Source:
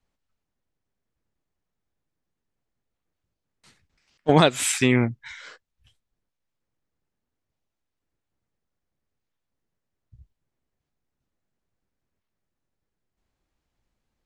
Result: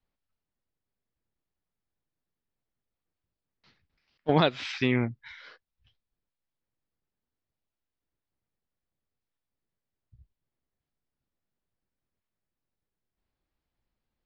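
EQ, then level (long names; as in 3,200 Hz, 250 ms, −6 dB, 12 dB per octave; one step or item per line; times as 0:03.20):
Butterworth low-pass 5,200 Hz 48 dB per octave
−6.0 dB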